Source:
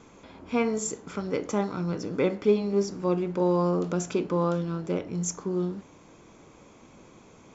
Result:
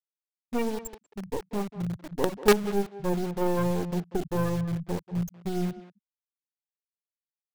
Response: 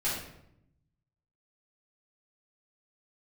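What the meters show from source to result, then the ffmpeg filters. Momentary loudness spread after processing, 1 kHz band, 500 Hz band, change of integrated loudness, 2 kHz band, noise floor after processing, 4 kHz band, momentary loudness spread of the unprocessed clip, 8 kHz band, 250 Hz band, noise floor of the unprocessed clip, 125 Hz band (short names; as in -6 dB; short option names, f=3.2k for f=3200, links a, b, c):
11 LU, 0.0 dB, -2.5 dB, -1.5 dB, +2.5 dB, under -85 dBFS, +3.5 dB, 7 LU, n/a, -2.0 dB, -53 dBFS, 0.0 dB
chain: -filter_complex "[0:a]aeval=exprs='val(0)+0.0126*(sin(2*PI*60*n/s)+sin(2*PI*2*60*n/s)/2+sin(2*PI*3*60*n/s)/3+sin(2*PI*4*60*n/s)/4+sin(2*PI*5*60*n/s)/5)':c=same,afftfilt=real='re*gte(hypot(re,im),0.2)':imag='im*gte(hypot(re,im),0.2)':win_size=1024:overlap=0.75,acrossover=split=250[a][b];[a]asubboost=boost=9.5:cutoff=91[c];[b]acrusher=bits=4:dc=4:mix=0:aa=0.000001[d];[c][d]amix=inputs=2:normalize=0,asplit=2[e][f];[f]adelay=190,highpass=300,lowpass=3.4k,asoftclip=type=hard:threshold=-19dB,volume=-13dB[g];[e][g]amix=inputs=2:normalize=0,volume=2dB"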